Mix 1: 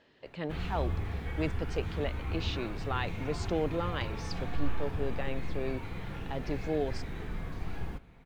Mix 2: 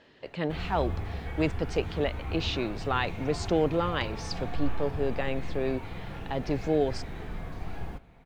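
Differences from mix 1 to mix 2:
speech +6.0 dB
background: add parametric band 700 Hz +5.5 dB 0.65 octaves

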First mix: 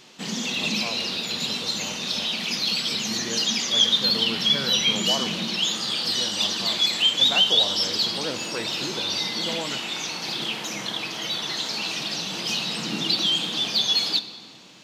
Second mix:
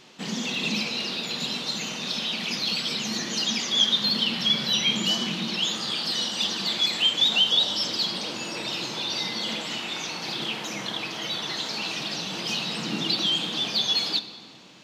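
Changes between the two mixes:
speech −11.0 dB
master: add high-shelf EQ 4,600 Hz −6 dB

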